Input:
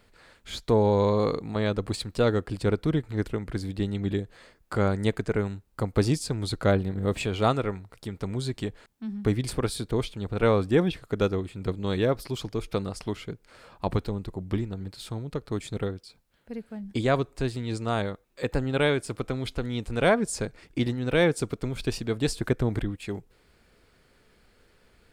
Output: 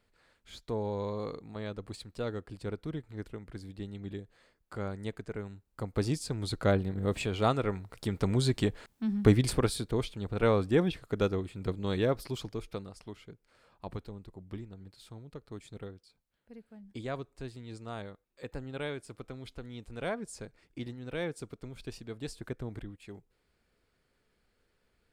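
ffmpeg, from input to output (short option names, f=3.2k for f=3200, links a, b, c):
-af "volume=3dB,afade=t=in:st=5.44:d=1.14:silence=0.375837,afade=t=in:st=7.56:d=0.56:silence=0.446684,afade=t=out:st=9.28:d=0.6:silence=0.446684,afade=t=out:st=12.28:d=0.6:silence=0.334965"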